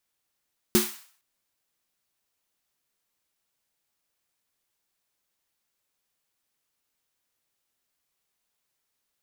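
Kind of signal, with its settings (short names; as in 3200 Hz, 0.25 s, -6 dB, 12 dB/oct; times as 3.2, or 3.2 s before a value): snare drum length 0.46 s, tones 220 Hz, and 360 Hz, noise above 840 Hz, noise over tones -4 dB, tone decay 0.23 s, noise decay 0.50 s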